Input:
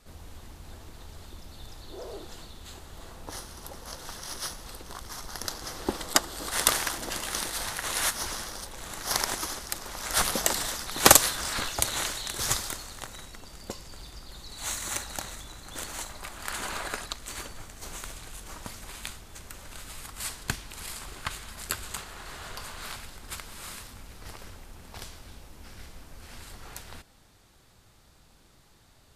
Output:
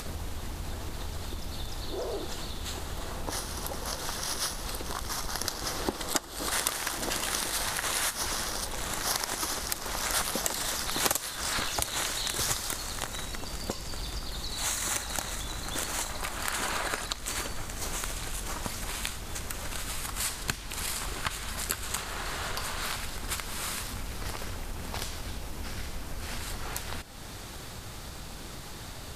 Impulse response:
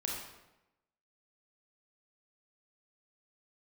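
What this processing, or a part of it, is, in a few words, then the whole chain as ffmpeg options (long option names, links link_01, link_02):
upward and downward compression: -af "acompressor=mode=upward:threshold=-35dB:ratio=2.5,acompressor=threshold=-33dB:ratio=5,volume=6dB"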